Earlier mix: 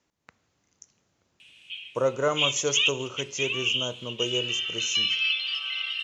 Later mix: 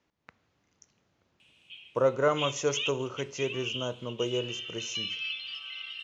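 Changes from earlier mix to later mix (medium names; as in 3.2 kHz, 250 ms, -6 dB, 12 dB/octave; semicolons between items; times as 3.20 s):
speech: add low-pass 4.2 kHz 12 dB/octave; background -9.5 dB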